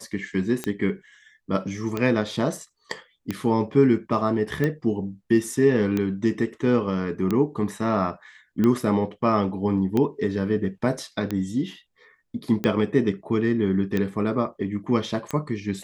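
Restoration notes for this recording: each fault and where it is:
scratch tick 45 rpm −12 dBFS

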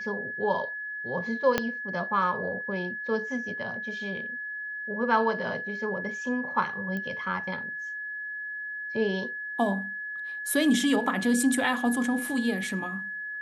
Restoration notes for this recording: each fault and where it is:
whistle 1,700 Hz −33 dBFS
0:01.58: click −9 dBFS
0:06.97: click −22 dBFS

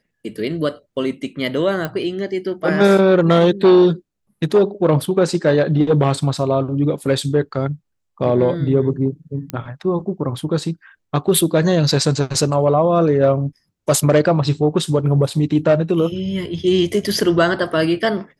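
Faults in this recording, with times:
0:01.85: click −10 dBFS
0:09.50: click −10 dBFS

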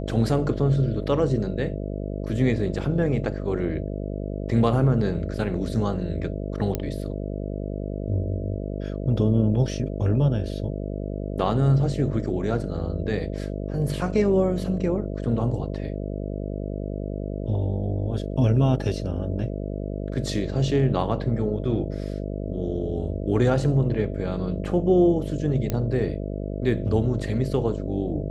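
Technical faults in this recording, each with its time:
mains buzz 50 Hz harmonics 13 −30 dBFS
0:06.75: click −11 dBFS
0:25.70: click −12 dBFS

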